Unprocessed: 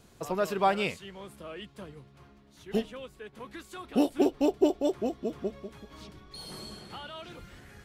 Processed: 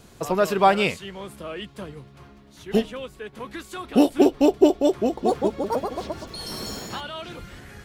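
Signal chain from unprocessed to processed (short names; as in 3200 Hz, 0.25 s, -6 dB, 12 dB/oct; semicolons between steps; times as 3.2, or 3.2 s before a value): 4.71–7.01 echoes that change speed 0.463 s, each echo +4 st, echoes 2; gain +8 dB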